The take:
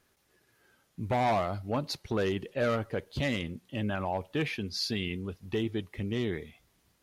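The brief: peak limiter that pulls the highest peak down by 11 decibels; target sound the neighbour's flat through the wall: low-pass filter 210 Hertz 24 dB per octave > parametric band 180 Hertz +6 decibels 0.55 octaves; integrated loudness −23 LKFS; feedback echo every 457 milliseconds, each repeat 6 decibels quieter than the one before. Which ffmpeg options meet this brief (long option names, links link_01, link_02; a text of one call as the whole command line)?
ffmpeg -i in.wav -af "alimiter=level_in=7dB:limit=-24dB:level=0:latency=1,volume=-7dB,lowpass=frequency=210:width=0.5412,lowpass=frequency=210:width=1.3066,equalizer=frequency=180:width_type=o:width=0.55:gain=6,aecho=1:1:457|914|1371|1828|2285|2742:0.501|0.251|0.125|0.0626|0.0313|0.0157,volume=19.5dB" out.wav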